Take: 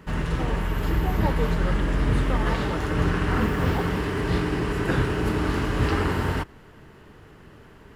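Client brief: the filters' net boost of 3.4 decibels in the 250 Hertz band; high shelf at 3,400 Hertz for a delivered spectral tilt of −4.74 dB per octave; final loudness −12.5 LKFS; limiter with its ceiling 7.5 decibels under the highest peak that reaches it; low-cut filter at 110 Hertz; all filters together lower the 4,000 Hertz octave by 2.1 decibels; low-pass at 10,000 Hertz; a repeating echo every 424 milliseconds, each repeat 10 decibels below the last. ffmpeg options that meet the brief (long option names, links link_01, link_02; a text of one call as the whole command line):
ffmpeg -i in.wav -af "highpass=110,lowpass=10000,equalizer=frequency=250:width_type=o:gain=5,highshelf=frequency=3400:gain=7.5,equalizer=frequency=4000:width_type=o:gain=-8.5,alimiter=limit=-18dB:level=0:latency=1,aecho=1:1:424|848|1272|1696:0.316|0.101|0.0324|0.0104,volume=14.5dB" out.wav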